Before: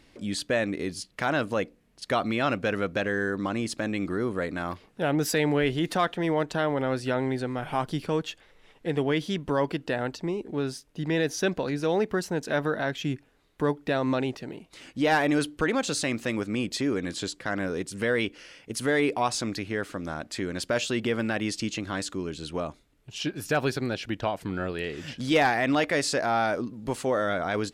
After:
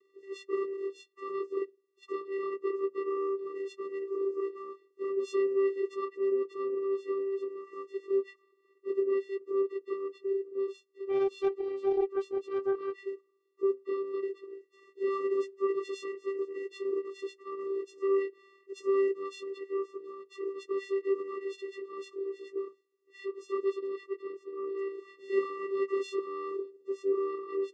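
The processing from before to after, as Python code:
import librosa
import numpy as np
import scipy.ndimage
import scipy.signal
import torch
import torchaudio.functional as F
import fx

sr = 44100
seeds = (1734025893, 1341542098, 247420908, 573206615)

y = fx.partial_stretch(x, sr, pct=87)
y = fx.vocoder(y, sr, bands=8, carrier='square', carrier_hz=391.0)
y = fx.doppler_dist(y, sr, depth_ms=0.19, at=(11.09, 13.05))
y = y * 10.0 ** (-3.0 / 20.0)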